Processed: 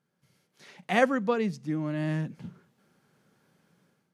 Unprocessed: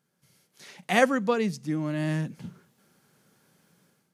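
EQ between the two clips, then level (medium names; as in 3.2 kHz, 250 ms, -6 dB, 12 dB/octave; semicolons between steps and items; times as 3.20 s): treble shelf 5.2 kHz -11 dB; -1.5 dB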